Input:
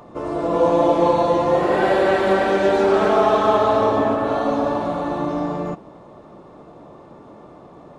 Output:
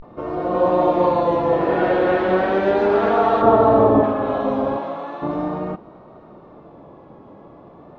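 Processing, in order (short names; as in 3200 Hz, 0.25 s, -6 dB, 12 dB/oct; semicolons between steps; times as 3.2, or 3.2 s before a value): 3.42–4.06 tilt shelf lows +7.5 dB, about 1200 Hz; 4.75–5.19 HPF 430 Hz -> 1300 Hz 6 dB/oct; vibrato 0.38 Hz 95 cents; air absorption 230 m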